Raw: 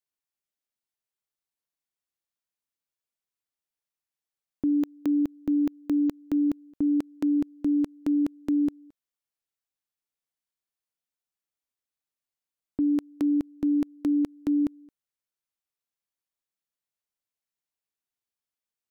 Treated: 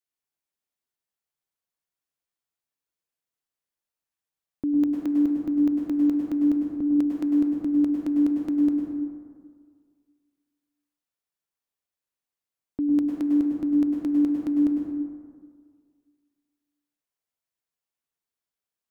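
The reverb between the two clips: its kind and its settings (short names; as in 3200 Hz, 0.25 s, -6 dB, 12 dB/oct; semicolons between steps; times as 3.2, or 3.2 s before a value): plate-style reverb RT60 1.9 s, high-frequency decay 0.35×, pre-delay 90 ms, DRR 0 dB; gain -1.5 dB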